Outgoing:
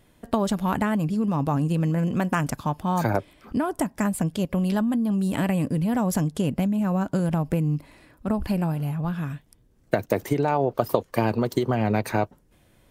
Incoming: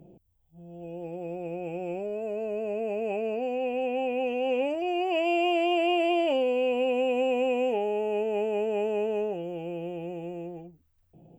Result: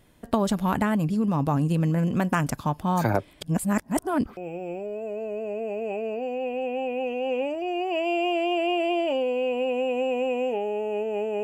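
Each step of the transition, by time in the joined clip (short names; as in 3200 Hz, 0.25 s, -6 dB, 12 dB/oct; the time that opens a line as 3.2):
outgoing
3.41–4.37 reverse
4.37 switch to incoming from 1.57 s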